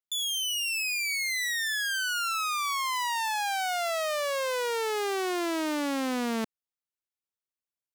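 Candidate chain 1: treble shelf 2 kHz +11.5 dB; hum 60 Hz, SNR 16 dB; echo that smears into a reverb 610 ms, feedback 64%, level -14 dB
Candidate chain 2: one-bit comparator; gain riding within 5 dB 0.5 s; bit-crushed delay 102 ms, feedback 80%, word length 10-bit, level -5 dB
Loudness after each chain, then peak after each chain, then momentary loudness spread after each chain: -21.5 LUFS, -27.0 LUFS; -9.5 dBFS, -18.5 dBFS; 19 LU, 0 LU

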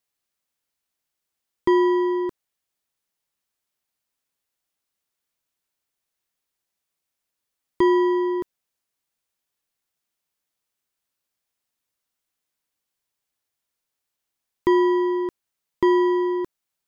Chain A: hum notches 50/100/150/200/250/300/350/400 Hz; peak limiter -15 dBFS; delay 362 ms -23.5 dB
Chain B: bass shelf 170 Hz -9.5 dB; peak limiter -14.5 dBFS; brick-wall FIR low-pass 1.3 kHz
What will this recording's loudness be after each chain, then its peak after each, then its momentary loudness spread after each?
-24.0 LUFS, -24.5 LUFS; -15.0 dBFS, -15.0 dBFS; 11 LU, 11 LU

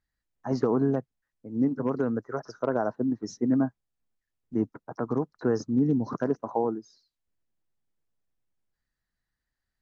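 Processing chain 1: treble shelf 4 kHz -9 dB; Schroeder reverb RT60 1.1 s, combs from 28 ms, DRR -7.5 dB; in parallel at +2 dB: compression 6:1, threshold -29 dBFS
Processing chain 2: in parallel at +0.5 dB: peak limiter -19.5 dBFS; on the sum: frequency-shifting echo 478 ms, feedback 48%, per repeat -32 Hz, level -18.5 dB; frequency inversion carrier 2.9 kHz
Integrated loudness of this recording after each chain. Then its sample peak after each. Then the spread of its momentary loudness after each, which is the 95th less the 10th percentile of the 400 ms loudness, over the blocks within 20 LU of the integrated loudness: -18.5 LUFS, -20.0 LUFS; -4.0 dBFS, -8.0 dBFS; 11 LU, 18 LU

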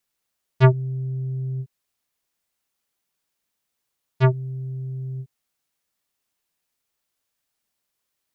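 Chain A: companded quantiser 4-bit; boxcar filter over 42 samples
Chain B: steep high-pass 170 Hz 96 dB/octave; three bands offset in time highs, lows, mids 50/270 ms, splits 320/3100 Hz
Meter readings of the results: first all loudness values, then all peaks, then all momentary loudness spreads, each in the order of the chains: -24.5 LUFS, -30.5 LUFS; -6.0 dBFS, -10.5 dBFS; 16 LU, 15 LU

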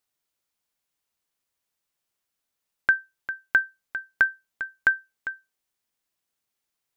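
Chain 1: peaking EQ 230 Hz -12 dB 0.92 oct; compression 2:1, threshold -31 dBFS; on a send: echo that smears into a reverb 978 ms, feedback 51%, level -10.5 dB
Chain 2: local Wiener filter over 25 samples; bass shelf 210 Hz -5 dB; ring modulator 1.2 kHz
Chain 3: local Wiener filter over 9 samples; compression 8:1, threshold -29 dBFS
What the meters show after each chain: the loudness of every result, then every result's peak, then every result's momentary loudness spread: -35.0 LUFS, -28.5 LUFS, -37.0 LUFS; -11.5 dBFS, -9.0 dBFS, -11.0 dBFS; 16 LU, 15 LU, 5 LU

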